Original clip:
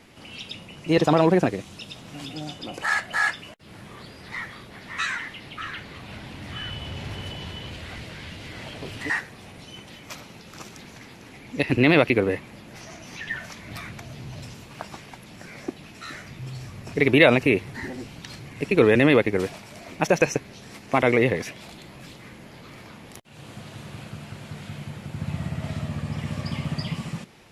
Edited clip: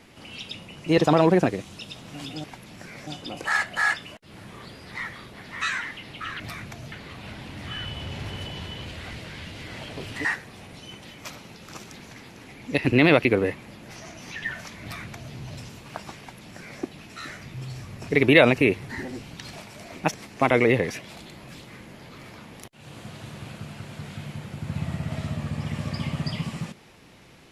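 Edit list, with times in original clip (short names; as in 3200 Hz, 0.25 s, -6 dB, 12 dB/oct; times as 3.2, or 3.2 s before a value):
13.67–14.19 copy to 5.77
15.04–15.67 copy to 2.44
18.38–19.49 cut
20.1–20.66 cut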